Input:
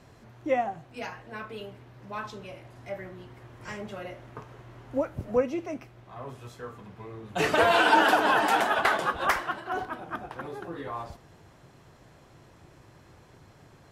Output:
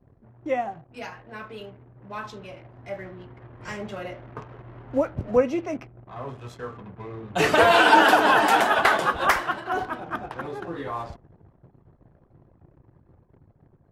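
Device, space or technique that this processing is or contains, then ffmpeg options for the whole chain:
voice memo with heavy noise removal: -af "anlmdn=0.00398,dynaudnorm=framelen=980:gausssize=7:maxgain=6dB"

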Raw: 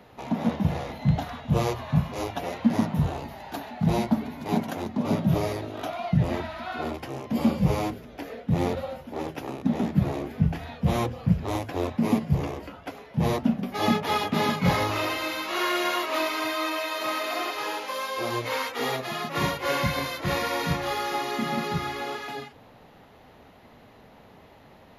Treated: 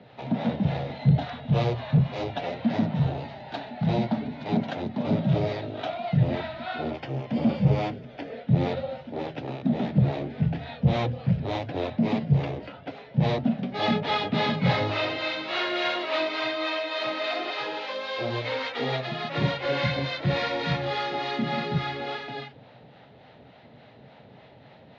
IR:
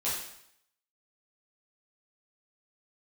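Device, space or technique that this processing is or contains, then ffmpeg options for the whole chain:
guitar amplifier with harmonic tremolo: -filter_complex "[0:a]acrossover=split=550[link_01][link_02];[link_01]aeval=exprs='val(0)*(1-0.5/2+0.5/2*cos(2*PI*3.5*n/s))':channel_layout=same[link_03];[link_02]aeval=exprs='val(0)*(1-0.5/2-0.5/2*cos(2*PI*3.5*n/s))':channel_layout=same[link_04];[link_03][link_04]amix=inputs=2:normalize=0,asoftclip=type=tanh:threshold=-18dB,highpass=98,equalizer=frequency=130:width_type=q:width=4:gain=9,equalizer=frequency=350:width_type=q:width=4:gain=-3,equalizer=frequency=600:width_type=q:width=4:gain=3,equalizer=frequency=1100:width_type=q:width=4:gain=-8,equalizer=frequency=3800:width_type=q:width=4:gain=4,lowpass=frequency=4300:width=0.5412,lowpass=frequency=4300:width=1.3066,asettb=1/sr,asplit=3[link_05][link_06][link_07];[link_05]atrim=end=6.904[link_08];[link_06]atrim=start=6.9:end=8.37,asetpts=PTS-STARTPTS,afade=type=in:duration=0.004:curve=qsin,afade=type=out:start_time=1.466:duration=0.004:curve=qsin,bandreject=frequency=3900:width=9.5[link_09];[link_07]atrim=start=8.366[link_10];[link_08][link_09]acrossfade=duration=0.004:curve1=hsin:curve2=qsin[link_11];[link_11][link_10]acrossfade=duration=0.004:curve1=qsin:curve2=hsin,volume=3dB"

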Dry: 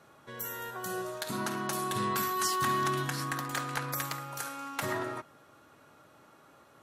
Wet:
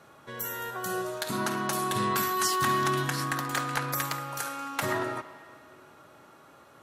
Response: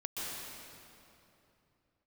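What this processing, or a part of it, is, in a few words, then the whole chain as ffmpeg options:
filtered reverb send: -filter_complex "[0:a]asplit=2[link_01][link_02];[link_02]highpass=330,lowpass=4800[link_03];[1:a]atrim=start_sample=2205[link_04];[link_03][link_04]afir=irnorm=-1:irlink=0,volume=-17dB[link_05];[link_01][link_05]amix=inputs=2:normalize=0,volume=3.5dB"

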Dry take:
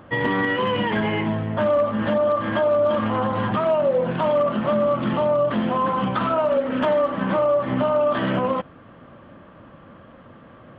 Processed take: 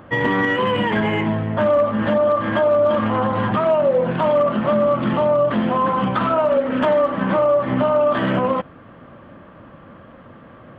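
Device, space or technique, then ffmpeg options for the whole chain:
exciter from parts: -filter_complex "[0:a]asplit=2[link_01][link_02];[link_02]highpass=frequency=2100:width=0.5412,highpass=frequency=2100:width=1.3066,asoftclip=type=tanh:threshold=-31.5dB,highpass=2600,volume=-12dB[link_03];[link_01][link_03]amix=inputs=2:normalize=0,volume=3dB"

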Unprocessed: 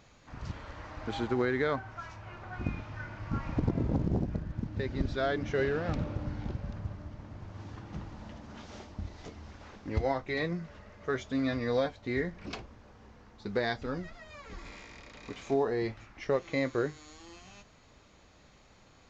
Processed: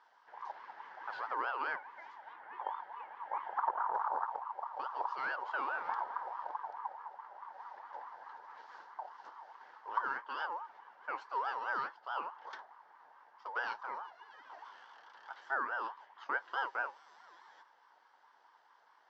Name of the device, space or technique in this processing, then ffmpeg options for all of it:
voice changer toy: -filter_complex "[0:a]asettb=1/sr,asplit=3[link_01][link_02][link_03];[link_01]atrim=end=2.334[link_04];[link_02]atrim=start=2.33:end=3.94,asetpts=PTS-STARTPTS,afade=type=in:duration=0.004:curve=qsin,afade=type=out:start_time=1.606:duration=0.004:curve=qsin,aemphasis=mode=reproduction:type=75kf[link_05];[link_03]atrim=start=3.936[link_06];[link_04][link_05]acrossfade=duration=0.004:curve1=hsin:curve2=qsin[link_07];[link_07][link_06]acrossfade=duration=0.004:curve1=qsin:curve2=hsin,aeval=exprs='val(0)*sin(2*PI*880*n/s+880*0.25/4.7*sin(2*PI*4.7*n/s))':channel_layout=same,highpass=580,equalizer=frequency=630:width_type=q:width=4:gain=-5,equalizer=frequency=920:width_type=q:width=4:gain=9,equalizer=frequency=1600:width_type=q:width=4:gain=7,equalizer=frequency=2500:width_type=q:width=4:gain=-10,equalizer=frequency=3800:width_type=q:width=4:gain=-5,lowpass=frequency=4800:width=0.5412,lowpass=frequency=4800:width=1.3066,volume=-6dB"

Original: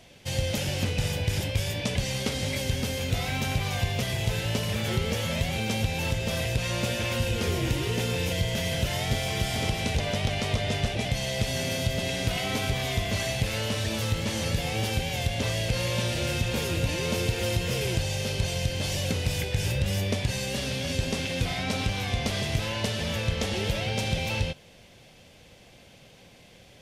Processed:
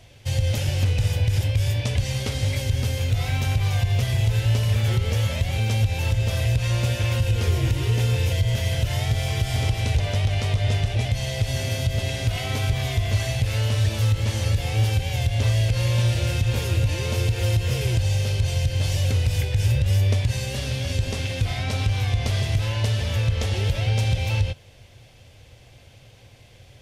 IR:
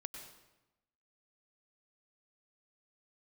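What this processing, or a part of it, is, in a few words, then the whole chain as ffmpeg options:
car stereo with a boomy subwoofer: -af "lowshelf=frequency=140:width_type=q:width=3:gain=6.5,alimiter=limit=-12dB:level=0:latency=1:release=74"

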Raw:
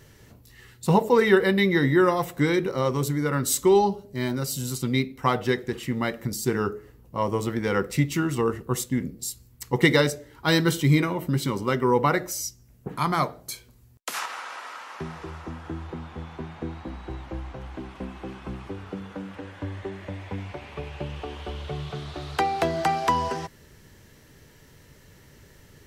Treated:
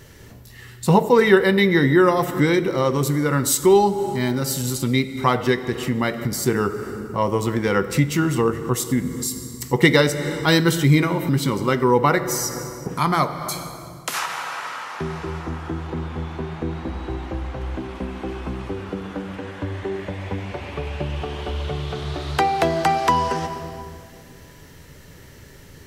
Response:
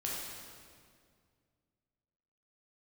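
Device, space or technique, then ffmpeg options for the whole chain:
ducked reverb: -filter_complex "[0:a]asplit=3[link_01][link_02][link_03];[1:a]atrim=start_sample=2205[link_04];[link_02][link_04]afir=irnorm=-1:irlink=0[link_05];[link_03]apad=whole_len=1140811[link_06];[link_05][link_06]sidechaincompress=threshold=-31dB:ratio=5:attack=9.3:release=228,volume=-5dB[link_07];[link_01][link_07]amix=inputs=2:normalize=0,volume=3.5dB"

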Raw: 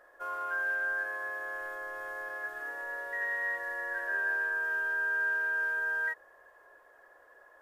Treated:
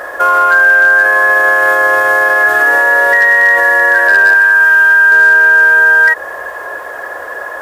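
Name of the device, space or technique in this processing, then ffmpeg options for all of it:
mastering chain: -filter_complex "[0:a]asettb=1/sr,asplit=3[link_01][link_02][link_03];[link_01]atrim=end=4.344[link_04];[link_02]atrim=start=4.34:end=5.12,asetpts=PTS-STARTPTS,afade=type=in:duration=0.004:curve=qsin,afade=type=out:start_time=0.776:duration=0.004:curve=qsin,equalizer=frequency=460:width_type=o:width=1.3:gain=-10.5[link_05];[link_03]atrim=start=5.116[link_06];[link_04][link_05]acrossfade=duration=0.004:curve1=hsin:curve2=qsin[link_07];[link_07][link_06]acrossfade=duration=0.004:curve1=qsin:curve2=hsin,highpass=52,equalizer=frequency=360:width_type=o:width=0.77:gain=-2,acompressor=threshold=-36dB:ratio=2,asoftclip=type=hard:threshold=-30.5dB,alimiter=level_in=36dB:limit=-1dB:release=50:level=0:latency=1,volume=-1dB"

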